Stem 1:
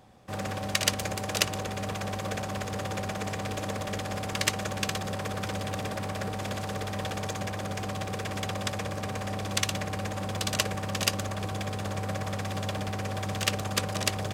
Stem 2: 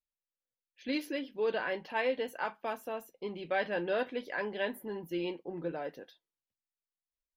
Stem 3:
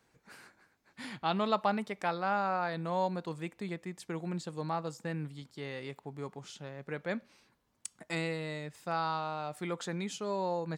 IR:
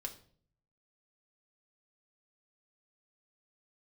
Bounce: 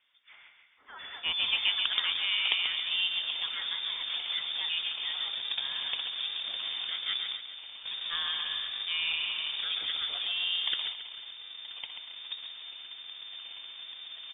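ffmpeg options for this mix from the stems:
-filter_complex "[0:a]lowshelf=frequency=180:gain=7.5,acrusher=samples=39:mix=1:aa=0.000001:lfo=1:lforange=39:lforate=1.2,adelay=1100,volume=-6.5dB,asplit=2[link_01][link_02];[link_02]volume=-8.5dB[link_03];[1:a]highpass=1400,volume=-5dB[link_04];[2:a]volume=-0.5dB,asplit=3[link_05][link_06][link_07];[link_06]volume=-6dB[link_08];[link_07]apad=whole_len=680760[link_09];[link_01][link_09]sidechaingate=range=-33dB:threshold=-57dB:ratio=16:detection=peak[link_10];[link_03][link_08]amix=inputs=2:normalize=0,aecho=0:1:137|274|411|548|685|822|959:1|0.48|0.23|0.111|0.0531|0.0255|0.0122[link_11];[link_10][link_04][link_05][link_11]amix=inputs=4:normalize=0,lowpass=frequency=3100:width_type=q:width=0.5098,lowpass=frequency=3100:width_type=q:width=0.6013,lowpass=frequency=3100:width_type=q:width=0.9,lowpass=frequency=3100:width_type=q:width=2.563,afreqshift=-3700"

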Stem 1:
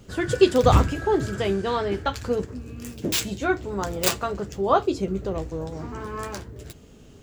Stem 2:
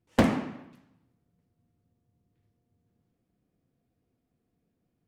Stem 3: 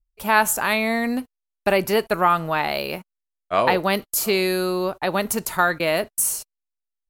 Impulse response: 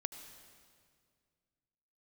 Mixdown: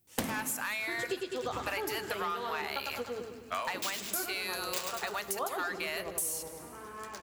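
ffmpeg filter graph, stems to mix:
-filter_complex "[0:a]highpass=frequency=610:poles=1,adelay=700,volume=-4dB,asplit=2[link_01][link_02];[link_02]volume=-5dB[link_03];[1:a]highshelf=frequency=10000:gain=8,crystalizer=i=4:c=0,volume=-0.5dB,asplit=2[link_04][link_05];[link_05]volume=-13.5dB[link_06];[2:a]highpass=1200,asoftclip=type=tanh:threshold=-18dB,volume=-3dB,asplit=3[link_07][link_08][link_09];[link_08]volume=-7dB[link_10];[link_09]apad=whole_len=349418[link_11];[link_01][link_11]sidechaingate=range=-33dB:threshold=-43dB:ratio=16:detection=peak[link_12];[3:a]atrim=start_sample=2205[link_13];[link_10][link_13]afir=irnorm=-1:irlink=0[link_14];[link_03][link_06]amix=inputs=2:normalize=0,aecho=0:1:102|204|306|408|510|612|714:1|0.51|0.26|0.133|0.0677|0.0345|0.0176[link_15];[link_12][link_04][link_07][link_14][link_15]amix=inputs=5:normalize=0,acompressor=threshold=-32dB:ratio=6"

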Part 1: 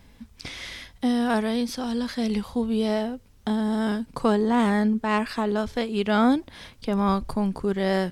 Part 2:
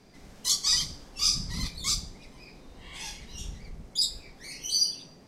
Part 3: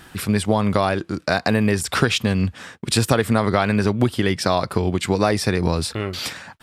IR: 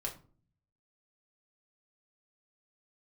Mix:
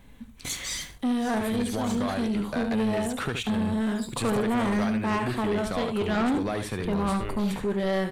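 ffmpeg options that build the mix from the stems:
-filter_complex "[0:a]volume=-3dB,asplit=4[link_01][link_02][link_03][link_04];[link_02]volume=-6dB[link_05];[link_03]volume=-6.5dB[link_06];[1:a]highshelf=frequency=4300:gain=8,aeval=exprs='sgn(val(0))*max(abs(val(0))-0.00794,0)':channel_layout=same,volume=-3.5dB,asplit=2[link_07][link_08];[link_08]volume=-23.5dB[link_09];[2:a]adelay=1250,volume=-9.5dB,asplit=2[link_10][link_11];[link_11]volume=-9.5dB[link_12];[link_04]apad=whole_len=232438[link_13];[link_07][link_13]sidechaincompress=threshold=-37dB:ratio=8:attack=7.9:release=837[link_14];[3:a]atrim=start_sample=2205[link_15];[link_05][link_15]afir=irnorm=-1:irlink=0[link_16];[link_06][link_09][link_12]amix=inputs=3:normalize=0,aecho=0:1:73:1[link_17];[link_01][link_14][link_10][link_16][link_17]amix=inputs=5:normalize=0,equalizer=frequency=5100:width=4.7:gain=-14.5,asoftclip=type=tanh:threshold=-21dB"

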